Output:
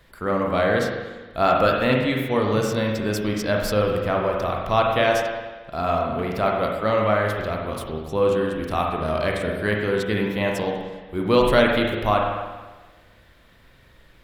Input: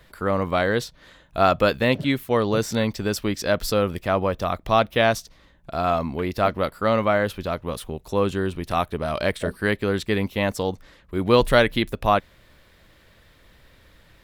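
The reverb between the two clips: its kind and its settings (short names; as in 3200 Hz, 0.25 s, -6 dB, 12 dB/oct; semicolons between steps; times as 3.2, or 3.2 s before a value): spring tank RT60 1.3 s, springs 38/46 ms, chirp 65 ms, DRR -0.5 dB; gain -2.5 dB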